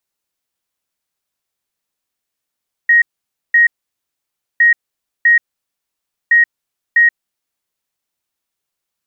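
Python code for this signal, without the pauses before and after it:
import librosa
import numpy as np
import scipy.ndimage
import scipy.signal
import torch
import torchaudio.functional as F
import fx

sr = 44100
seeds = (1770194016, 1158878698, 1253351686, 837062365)

y = fx.beep_pattern(sr, wave='sine', hz=1880.0, on_s=0.13, off_s=0.52, beeps=2, pause_s=0.93, groups=3, level_db=-6.0)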